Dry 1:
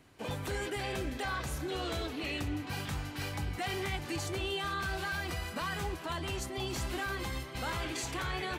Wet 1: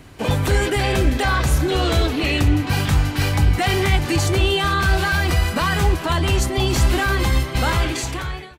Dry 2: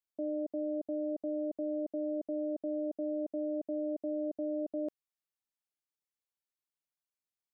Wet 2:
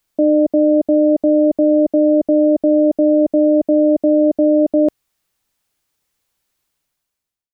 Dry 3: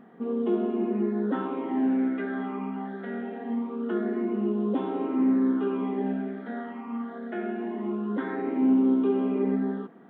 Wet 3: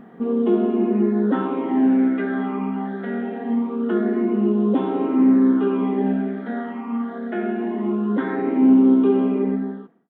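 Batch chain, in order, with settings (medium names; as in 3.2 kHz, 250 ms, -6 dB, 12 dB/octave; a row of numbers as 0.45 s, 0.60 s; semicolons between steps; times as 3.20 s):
fade out at the end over 0.93 s; bass shelf 120 Hz +9 dB; peak normalisation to -6 dBFS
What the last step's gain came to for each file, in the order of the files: +15.0 dB, +21.5 dB, +6.0 dB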